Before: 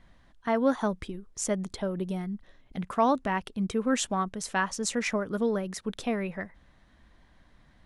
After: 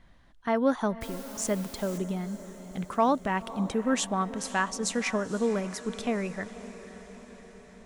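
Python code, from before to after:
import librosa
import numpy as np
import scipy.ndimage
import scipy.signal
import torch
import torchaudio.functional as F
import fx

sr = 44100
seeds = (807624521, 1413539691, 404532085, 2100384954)

y = fx.quant_dither(x, sr, seeds[0], bits=8, dither='triangular', at=(1.01, 1.98))
y = fx.echo_diffused(y, sr, ms=519, feedback_pct=62, wet_db=-15)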